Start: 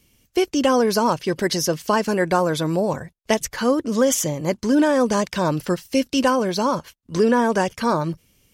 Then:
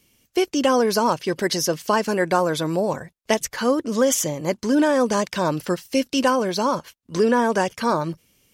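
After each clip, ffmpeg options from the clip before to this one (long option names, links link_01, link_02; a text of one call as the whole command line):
ffmpeg -i in.wav -af "lowshelf=frequency=120:gain=-9.5" out.wav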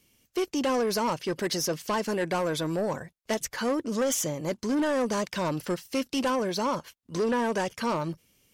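ffmpeg -i in.wav -af "asoftclip=type=tanh:threshold=-17.5dB,volume=-4dB" out.wav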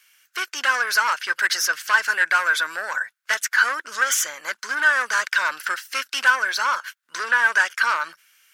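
ffmpeg -i in.wav -af "highpass=frequency=1500:width_type=q:width=6.2,volume=7dB" out.wav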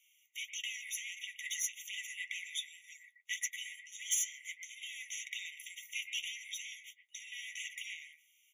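ffmpeg -i in.wav -filter_complex "[0:a]flanger=delay=7.1:depth=7:regen=48:speed=1.7:shape=sinusoidal,acrossover=split=1800[link_01][link_02];[link_01]adelay=120[link_03];[link_03][link_02]amix=inputs=2:normalize=0,afftfilt=real='re*eq(mod(floor(b*sr/1024/1900),2),1)':imag='im*eq(mod(floor(b*sr/1024/1900),2),1)':win_size=1024:overlap=0.75,volume=-5dB" out.wav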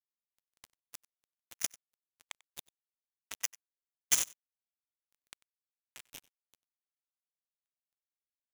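ffmpeg -i in.wav -filter_complex "[0:a]asplit=2[link_01][link_02];[link_02]volume=33.5dB,asoftclip=hard,volume=-33.5dB,volume=-9.5dB[link_03];[link_01][link_03]amix=inputs=2:normalize=0,acrusher=bits=3:mix=0:aa=0.5,aecho=1:1:94:0.0708,volume=8.5dB" out.wav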